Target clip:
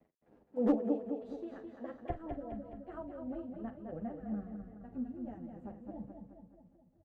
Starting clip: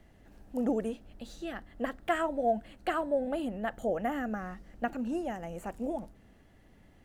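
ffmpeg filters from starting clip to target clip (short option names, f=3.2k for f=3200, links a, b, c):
-filter_complex "[0:a]tremolo=f=3:d=0.75,aeval=exprs='sgn(val(0))*max(abs(val(0))-0.00126,0)':c=same,asetnsamples=n=441:p=0,asendcmd='2.1 bandpass f 100',bandpass=f=400:t=q:w=0.98:csg=0,asplit=2[a][b];[b]adelay=44,volume=-12.5dB[c];[a][c]amix=inputs=2:normalize=0,aecho=1:1:211|422|633|844|1055|1266|1477:0.501|0.276|0.152|0.0834|0.0459|0.0252|0.0139,asoftclip=type=hard:threshold=-26dB,asplit=2[d][e];[e]adelay=9.2,afreqshift=-0.57[f];[d][f]amix=inputs=2:normalize=1,volume=7dB"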